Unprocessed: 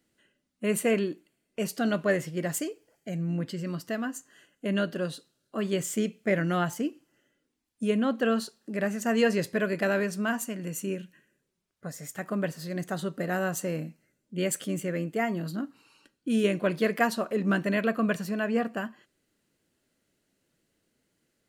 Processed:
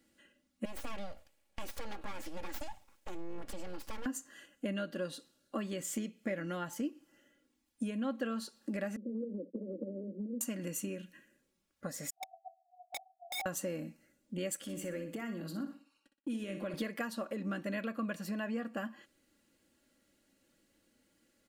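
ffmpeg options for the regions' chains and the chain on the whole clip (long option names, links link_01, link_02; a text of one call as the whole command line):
ffmpeg -i in.wav -filter_complex "[0:a]asettb=1/sr,asplit=3[link_01][link_02][link_03];[link_01]atrim=end=0.654[link_04];[link_02]atrim=start=0.65:end=4.06,asetpts=PTS-STARTPTS,afade=type=in:duration=0.004:curve=qsin,afade=type=out:start_time=3.406:duration=0.004:curve=qsin,acompressor=threshold=-41dB:ratio=3:attack=3.2:release=140:knee=1:detection=peak,aeval=exprs='abs(val(0))':channel_layout=same[link_05];[link_03]atrim=start=4.056[link_06];[link_04][link_05]acrossfade=duration=0.004:curve1=hsin:curve2=qsin[link_07];[link_07][link_06]acrossfade=duration=0.004:curve1=qsin:curve2=hsin,asettb=1/sr,asplit=3[link_08][link_09][link_10];[link_08]atrim=end=8.964[link_11];[link_09]atrim=start=8.96:end=10.41,asetpts=PTS-STARTPTS,afade=type=in:duration=0.004:curve=qsin,afade=type=out:start_time=1.446:duration=0.004:curve=qsin,acompressor=threshold=-27dB:ratio=10:attack=3.2:release=140:knee=1:detection=peak,acrusher=bits=5:dc=4:mix=0:aa=0.000001,asuperpass=centerf=320:order=20:qfactor=0.87[link_12];[link_10]atrim=start=10.406[link_13];[link_11][link_12]acrossfade=duration=0.004:curve1=hsin:curve2=qsin[link_14];[link_14][link_13]acrossfade=duration=0.004:curve1=qsin:curve2=hsin,asettb=1/sr,asplit=3[link_15][link_16][link_17];[link_15]atrim=end=12.104[link_18];[link_16]atrim=start=12.1:end=13.46,asetpts=PTS-STARTPTS,afade=type=in:duration=0.004:curve=qsin,afade=type=out:start_time=1.356:duration=0.004:curve=qsin,asuperpass=centerf=720:order=20:qfactor=7.1,aeval=exprs='(mod(63.1*val(0)+1,2)-1)/63.1':channel_layout=same[link_19];[link_17]atrim=start=13.456[link_20];[link_18][link_19]acrossfade=duration=0.004:curve1=hsin:curve2=qsin[link_21];[link_21][link_20]acrossfade=duration=0.004:curve1=qsin:curve2=hsin,asettb=1/sr,asplit=3[link_22][link_23][link_24];[link_22]atrim=end=14.574[link_25];[link_23]atrim=start=14.57:end=16.74,asetpts=PTS-STARTPTS,afade=type=in:duration=0.004:curve=qsin,afade=type=out:start_time=2.166:duration=0.004:curve=qsin,agate=range=-33dB:threshold=-51dB:ratio=3:release=100:detection=peak,acompressor=threshold=-40dB:ratio=3:attack=3.2:release=140:knee=1:detection=peak,aecho=1:1:61|122|183|244:0.335|0.121|0.0434|0.0156,atrim=end_sample=95697[link_26];[link_24]atrim=start=16.736[link_27];[link_25][link_26]acrossfade=duration=0.004:curve1=hsin:curve2=qsin[link_28];[link_28][link_27]acrossfade=duration=0.004:curve1=qsin:curve2=hsin,acompressor=threshold=-37dB:ratio=6,aecho=1:1:3.6:0.55,volume=1dB" out.wav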